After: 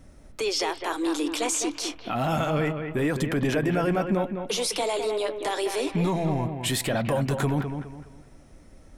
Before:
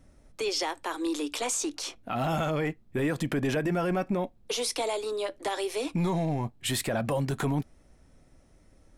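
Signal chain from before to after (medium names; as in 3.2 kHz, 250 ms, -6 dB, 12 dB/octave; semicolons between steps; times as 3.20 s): in parallel at +2 dB: peak limiter -32.5 dBFS, peak gain reduction 12 dB; on the sum: bucket-brigade echo 207 ms, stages 4096, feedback 34%, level -7 dB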